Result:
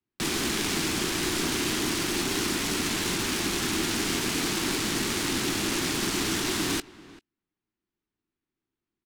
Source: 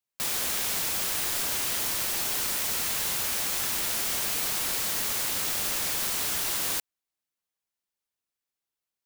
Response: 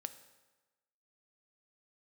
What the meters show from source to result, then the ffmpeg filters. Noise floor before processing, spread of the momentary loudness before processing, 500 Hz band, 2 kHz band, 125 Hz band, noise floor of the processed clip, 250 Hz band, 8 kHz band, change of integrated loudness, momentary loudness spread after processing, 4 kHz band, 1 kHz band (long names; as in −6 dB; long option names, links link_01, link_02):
below −85 dBFS, 0 LU, +9.0 dB, +4.0 dB, +10.5 dB, below −85 dBFS, +16.5 dB, −1.5 dB, −0.5 dB, 0 LU, +3.0 dB, +3.5 dB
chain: -filter_complex "[0:a]acrossover=split=160|1200|2300[link_01][link_02][link_03][link_04];[link_01]alimiter=level_in=25dB:limit=-24dB:level=0:latency=1:release=375,volume=-25dB[link_05];[link_04]asplit=2[link_06][link_07];[link_07]adelay=21,volume=-10.5dB[link_08];[link_06][link_08]amix=inputs=2:normalize=0[link_09];[link_05][link_02][link_03][link_09]amix=inputs=4:normalize=0,lowshelf=frequency=430:width_type=q:width=3:gain=8,aecho=1:1:390:0.112,adynamicsmooth=sensitivity=7.5:basefreq=2600,volume=5dB"